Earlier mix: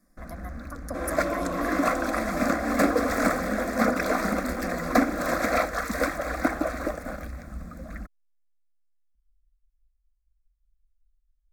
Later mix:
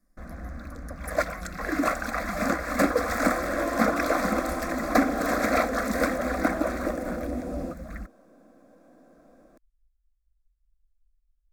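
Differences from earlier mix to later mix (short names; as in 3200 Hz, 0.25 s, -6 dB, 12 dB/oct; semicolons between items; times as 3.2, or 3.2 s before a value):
speech -7.5 dB; second sound: entry +2.35 s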